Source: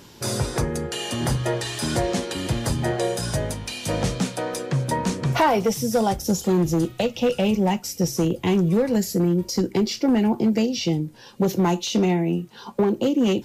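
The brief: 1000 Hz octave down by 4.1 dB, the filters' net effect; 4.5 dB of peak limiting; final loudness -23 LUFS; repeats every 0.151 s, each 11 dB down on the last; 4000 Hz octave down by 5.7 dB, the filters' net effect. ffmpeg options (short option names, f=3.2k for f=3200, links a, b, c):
-af "equalizer=f=1k:t=o:g=-5,equalizer=f=4k:t=o:g=-8,alimiter=limit=-15.5dB:level=0:latency=1,aecho=1:1:151|302|453:0.282|0.0789|0.0221,volume=2dB"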